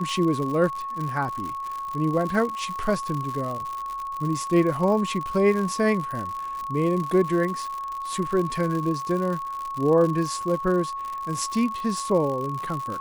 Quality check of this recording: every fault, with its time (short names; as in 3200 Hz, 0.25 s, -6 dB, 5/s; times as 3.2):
crackle 110/s -29 dBFS
tone 1100 Hz -29 dBFS